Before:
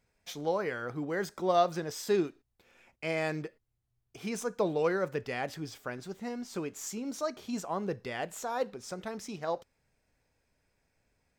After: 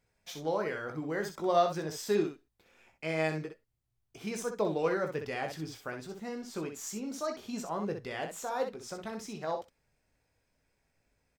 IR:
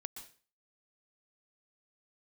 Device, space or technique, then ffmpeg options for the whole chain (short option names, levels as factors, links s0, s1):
slapback doubling: -filter_complex "[0:a]asplit=3[s0][s1][s2];[s1]adelay=19,volume=0.398[s3];[s2]adelay=63,volume=0.447[s4];[s0][s3][s4]amix=inputs=3:normalize=0,volume=0.794"